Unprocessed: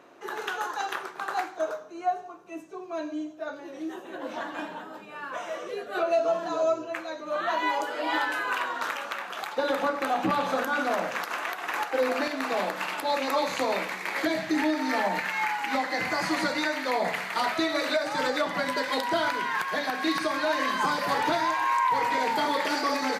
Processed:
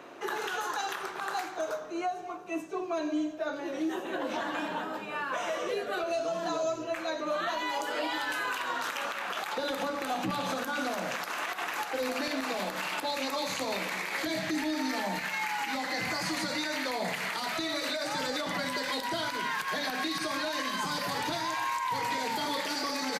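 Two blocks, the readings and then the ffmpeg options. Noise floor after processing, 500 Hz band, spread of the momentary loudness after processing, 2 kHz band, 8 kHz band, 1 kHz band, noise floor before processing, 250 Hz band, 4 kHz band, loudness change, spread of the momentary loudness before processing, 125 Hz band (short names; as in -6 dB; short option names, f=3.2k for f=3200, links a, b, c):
-40 dBFS, -5.0 dB, 3 LU, -4.0 dB, +2.0 dB, -5.5 dB, -43 dBFS, -3.0 dB, 0.0 dB, -4.0 dB, 10 LU, 0.0 dB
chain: -filter_complex "[0:a]equalizer=f=2.8k:w=1.5:g=2,acrossover=split=200|3800[a][b][c];[b]acompressor=threshold=-34dB:ratio=6[d];[a][d][c]amix=inputs=3:normalize=0,alimiter=level_in=4.5dB:limit=-24dB:level=0:latency=1:release=71,volume=-4.5dB,asplit=2[e][f];[f]adelay=250,highpass=300,lowpass=3.4k,asoftclip=type=hard:threshold=-37.5dB,volume=-14dB[g];[e][g]amix=inputs=2:normalize=0,volume=5.5dB"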